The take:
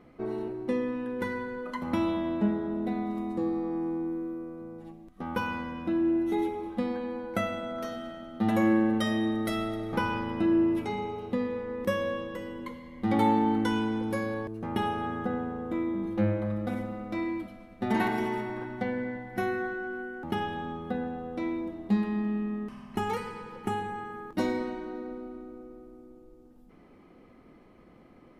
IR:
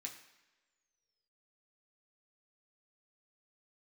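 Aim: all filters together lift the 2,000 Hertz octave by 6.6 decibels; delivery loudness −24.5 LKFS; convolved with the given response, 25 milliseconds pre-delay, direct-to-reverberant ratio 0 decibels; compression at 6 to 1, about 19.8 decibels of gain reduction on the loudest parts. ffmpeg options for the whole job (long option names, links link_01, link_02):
-filter_complex "[0:a]equalizer=frequency=2000:width_type=o:gain=8.5,acompressor=threshold=-42dB:ratio=6,asplit=2[link_01][link_02];[1:a]atrim=start_sample=2205,adelay=25[link_03];[link_02][link_03]afir=irnorm=-1:irlink=0,volume=3.5dB[link_04];[link_01][link_04]amix=inputs=2:normalize=0,volume=17dB"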